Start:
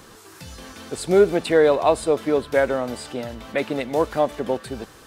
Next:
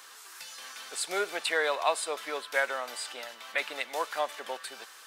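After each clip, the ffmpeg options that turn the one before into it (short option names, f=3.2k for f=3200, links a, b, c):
-af "highpass=1.2k"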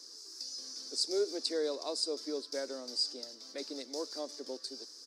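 -af "firequalizer=gain_entry='entry(110,0);entry(170,-16);entry(260,10);entry(760,-17);entry(1400,-21);entry(2900,-25);entry(4900,11);entry(7300,-5);entry(13000,-18)':delay=0.05:min_phase=1"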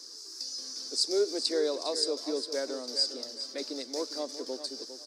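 -af "aecho=1:1:405|810|1215:0.282|0.0761|0.0205,volume=4.5dB"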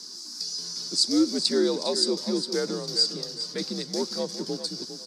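-af "afreqshift=-89,volume=5.5dB"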